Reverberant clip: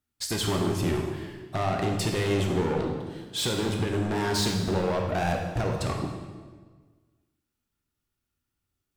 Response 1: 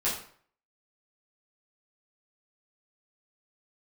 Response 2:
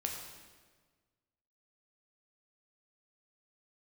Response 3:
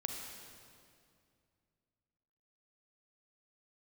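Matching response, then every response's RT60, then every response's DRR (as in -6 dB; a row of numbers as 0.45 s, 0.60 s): 2; 0.55 s, 1.5 s, 2.3 s; -9.5 dB, 0.5 dB, 2.0 dB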